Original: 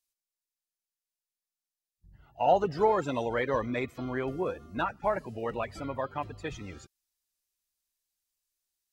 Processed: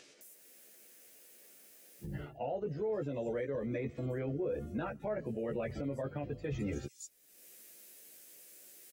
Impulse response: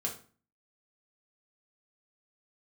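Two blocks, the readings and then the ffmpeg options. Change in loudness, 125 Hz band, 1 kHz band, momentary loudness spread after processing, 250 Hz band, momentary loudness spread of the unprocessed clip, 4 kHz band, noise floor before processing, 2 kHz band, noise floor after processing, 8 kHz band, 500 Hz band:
-7.5 dB, +0.5 dB, -16.5 dB, 19 LU, -2.5 dB, 13 LU, under -10 dB, under -85 dBFS, -11.0 dB, -61 dBFS, n/a, -6.5 dB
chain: -filter_complex "[0:a]acrossover=split=5900[a][b];[b]adelay=210[c];[a][c]amix=inputs=2:normalize=0,acrossover=split=200[d][e];[e]acompressor=mode=upward:threshold=-42dB:ratio=2.5[f];[d][f]amix=inputs=2:normalize=0,equalizer=f=125:t=o:w=1:g=7,equalizer=f=250:t=o:w=1:g=4,equalizer=f=500:t=o:w=1:g=10,equalizer=f=1k:t=o:w=1:g=-12,equalizer=f=2k:t=o:w=1:g=3,equalizer=f=4k:t=o:w=1:g=-6,areverse,acompressor=threshold=-33dB:ratio=12,areverse,asplit=2[g][h];[h]adelay=14,volume=-3dB[i];[g][i]amix=inputs=2:normalize=0,alimiter=level_in=9.5dB:limit=-24dB:level=0:latency=1:release=164,volume=-9.5dB,volume=5dB"

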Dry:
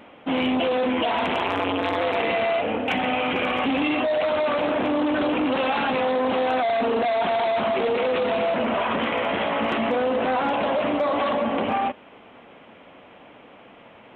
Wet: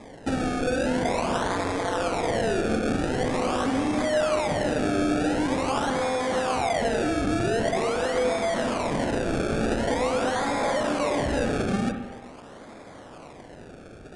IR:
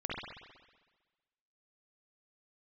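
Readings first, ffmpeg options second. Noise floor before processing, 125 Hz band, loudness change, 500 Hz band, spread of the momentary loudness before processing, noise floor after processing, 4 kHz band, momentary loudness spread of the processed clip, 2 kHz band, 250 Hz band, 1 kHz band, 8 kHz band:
-48 dBFS, +7.5 dB, -2.5 dB, -2.5 dB, 2 LU, -45 dBFS, -4.0 dB, 20 LU, -3.5 dB, -0.5 dB, -4.0 dB, n/a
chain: -filter_complex "[0:a]acompressor=threshold=-26dB:ratio=6,acrusher=samples=30:mix=1:aa=0.000001:lfo=1:lforange=30:lforate=0.45,aresample=22050,aresample=44100,asplit=2[a][b];[1:a]atrim=start_sample=2205,lowpass=2.5k[c];[b][c]afir=irnorm=-1:irlink=0,volume=-5.5dB[d];[a][d]amix=inputs=2:normalize=0"

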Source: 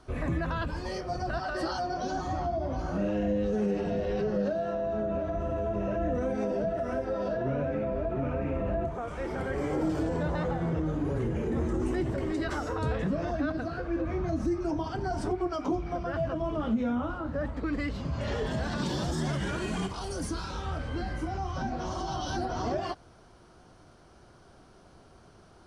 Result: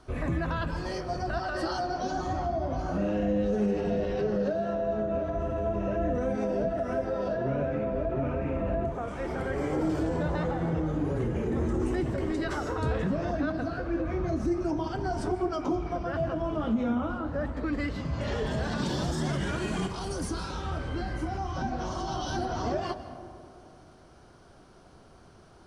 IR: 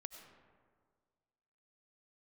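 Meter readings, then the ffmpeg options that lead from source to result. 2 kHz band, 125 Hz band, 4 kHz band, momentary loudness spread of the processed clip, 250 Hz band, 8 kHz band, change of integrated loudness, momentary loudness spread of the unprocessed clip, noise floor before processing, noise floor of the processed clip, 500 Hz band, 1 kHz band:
+1.0 dB, +1.0 dB, +0.5 dB, 5 LU, +1.0 dB, +0.5 dB, +1.0 dB, 5 LU, -56 dBFS, -54 dBFS, +1.0 dB, +1.0 dB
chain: -filter_complex "[0:a]asplit=2[a][b];[1:a]atrim=start_sample=2205,asetrate=27783,aresample=44100[c];[b][c]afir=irnorm=-1:irlink=0,volume=3.5dB[d];[a][d]amix=inputs=2:normalize=0,volume=-5.5dB"

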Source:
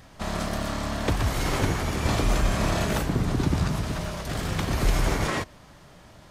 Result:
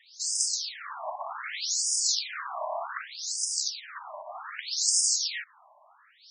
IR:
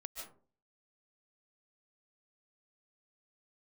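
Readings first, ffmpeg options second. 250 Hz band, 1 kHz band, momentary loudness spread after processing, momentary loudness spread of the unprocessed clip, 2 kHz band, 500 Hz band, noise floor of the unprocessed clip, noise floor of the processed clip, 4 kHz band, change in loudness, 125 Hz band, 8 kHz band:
under -40 dB, -6.0 dB, 16 LU, 6 LU, -6.5 dB, -11.5 dB, -50 dBFS, -60 dBFS, +4.5 dB, -1.0 dB, under -40 dB, +11.0 dB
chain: -af "aexciter=amount=6.7:drive=5.5:freq=4.4k,afftfilt=real='re*between(b*sr/1024,790*pow(6900/790,0.5+0.5*sin(2*PI*0.65*pts/sr))/1.41,790*pow(6900/790,0.5+0.5*sin(2*PI*0.65*pts/sr))*1.41)':imag='im*between(b*sr/1024,790*pow(6900/790,0.5+0.5*sin(2*PI*0.65*pts/sr))/1.41,790*pow(6900/790,0.5+0.5*sin(2*PI*0.65*pts/sr))*1.41)':win_size=1024:overlap=0.75"

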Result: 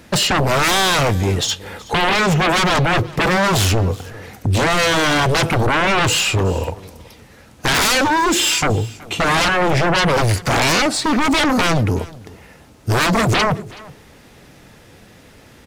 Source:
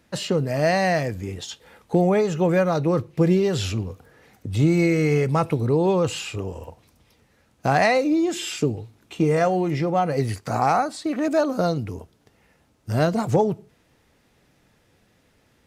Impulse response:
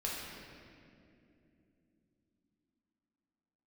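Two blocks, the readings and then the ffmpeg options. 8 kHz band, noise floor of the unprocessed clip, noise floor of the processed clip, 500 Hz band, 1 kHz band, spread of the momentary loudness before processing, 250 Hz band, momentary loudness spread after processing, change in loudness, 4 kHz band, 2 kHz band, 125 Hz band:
+15.5 dB, -62 dBFS, -46 dBFS, +1.5 dB, +7.5 dB, 13 LU, +2.0 dB, 9 LU, +6.0 dB, +16.5 dB, +13.0 dB, +5.0 dB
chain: -af "aeval=exprs='0.447*sin(PI/2*7.94*val(0)/0.447)':c=same,aecho=1:1:374:0.0841,volume=-5.5dB"

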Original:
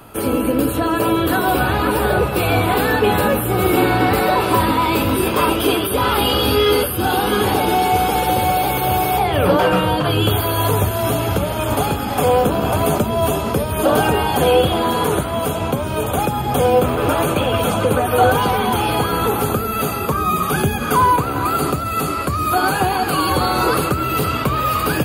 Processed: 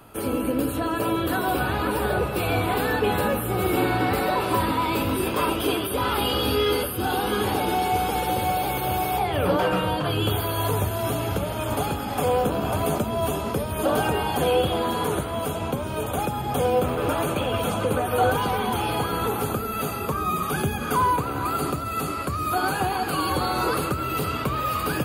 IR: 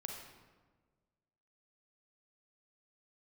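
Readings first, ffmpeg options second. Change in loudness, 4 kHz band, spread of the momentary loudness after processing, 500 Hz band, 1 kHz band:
-7.0 dB, -7.0 dB, 5 LU, -7.0 dB, -7.0 dB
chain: -filter_complex "[0:a]asplit=2[a][b];[1:a]atrim=start_sample=2205,asetrate=22491,aresample=44100[c];[b][c]afir=irnorm=-1:irlink=0,volume=-15dB[d];[a][d]amix=inputs=2:normalize=0,volume=-8.5dB"

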